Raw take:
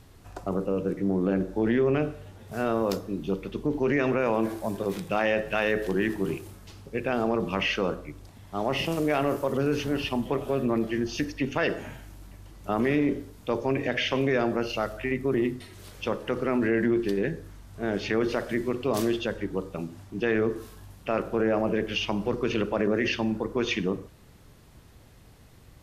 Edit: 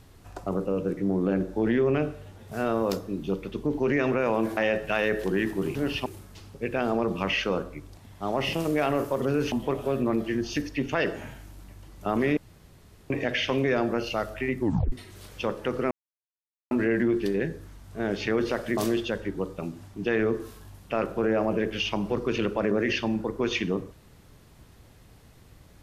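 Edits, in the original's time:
0:04.57–0:05.20: remove
0:09.84–0:10.15: move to 0:06.38
0:13.00–0:13.73: fill with room tone
0:15.23: tape stop 0.32 s
0:16.54: splice in silence 0.80 s
0:18.60–0:18.93: remove

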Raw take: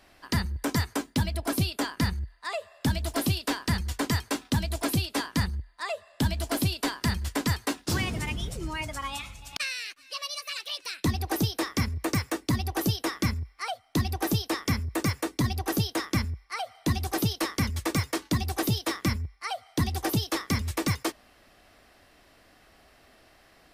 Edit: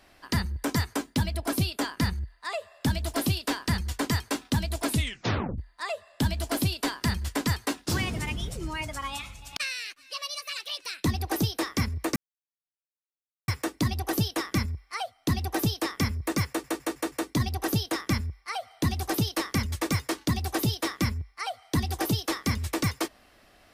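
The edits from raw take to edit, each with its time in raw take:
0:04.87: tape stop 0.71 s
0:12.16: splice in silence 1.32 s
0:15.16: stutter 0.16 s, 5 plays

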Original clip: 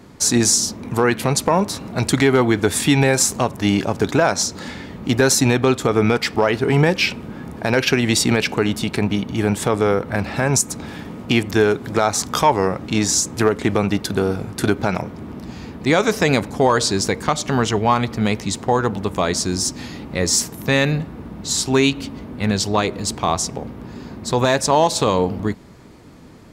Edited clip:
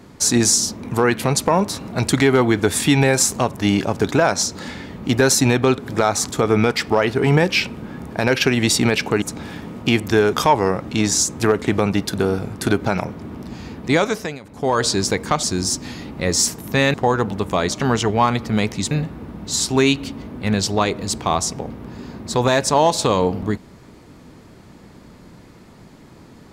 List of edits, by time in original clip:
0:08.68–0:10.65: remove
0:11.76–0:12.30: move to 0:05.78
0:15.90–0:16.84: duck −22 dB, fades 0.46 s
0:17.40–0:18.59: swap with 0:19.37–0:20.88

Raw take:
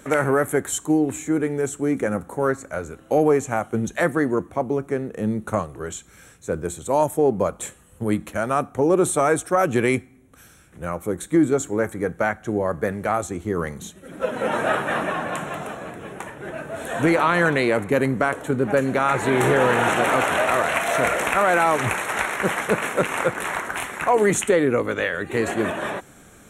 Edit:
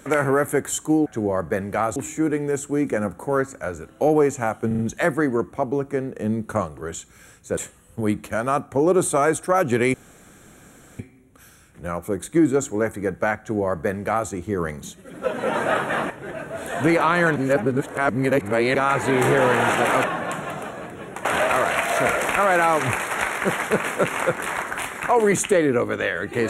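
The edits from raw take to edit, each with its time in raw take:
0:03.77: stutter 0.04 s, 4 plays
0:06.55–0:07.60: remove
0:09.97: splice in room tone 1.05 s
0:12.37–0:13.27: duplicate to 0:01.06
0:15.08–0:16.29: move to 0:20.23
0:17.55–0:18.94: reverse

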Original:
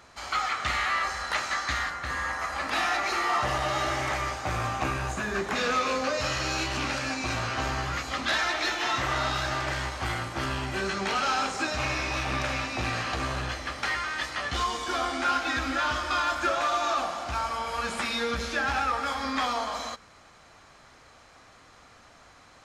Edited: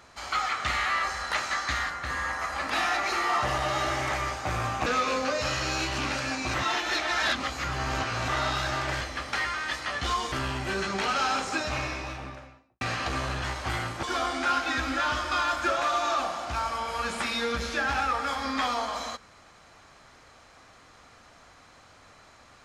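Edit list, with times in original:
0:04.86–0:05.65: remove
0:07.33–0:09.07: reverse
0:09.80–0:10.39: swap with 0:13.51–0:14.82
0:11.58–0:12.88: fade out and dull

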